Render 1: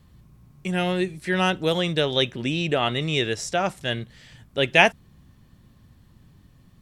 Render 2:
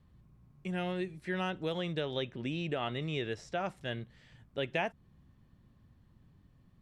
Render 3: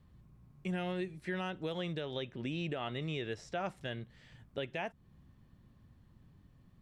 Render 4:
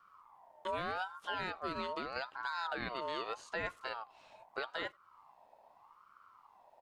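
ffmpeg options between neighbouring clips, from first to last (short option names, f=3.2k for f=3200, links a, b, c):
-filter_complex "[0:a]highshelf=f=3.8k:g=-11.5,acrossover=split=1600|5500[a][b][c];[a]acompressor=threshold=-22dB:ratio=4[d];[b]acompressor=threshold=-29dB:ratio=4[e];[c]acompressor=threshold=-53dB:ratio=4[f];[d][e][f]amix=inputs=3:normalize=0,volume=-9dB"
-af "alimiter=level_in=3.5dB:limit=-24dB:level=0:latency=1:release=358,volume=-3.5dB,volume=1dB"
-filter_complex "[0:a]asplit=2[a][b];[b]adelay=90,highpass=300,lowpass=3.4k,asoftclip=type=hard:threshold=-36.5dB,volume=-30dB[c];[a][c]amix=inputs=2:normalize=0,aeval=exprs='val(0)*sin(2*PI*1000*n/s+1000*0.25/0.81*sin(2*PI*0.81*n/s))':c=same,volume=1.5dB"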